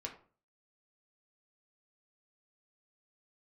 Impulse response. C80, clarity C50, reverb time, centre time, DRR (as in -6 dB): 14.5 dB, 10.5 dB, 0.40 s, 16 ms, 0.0 dB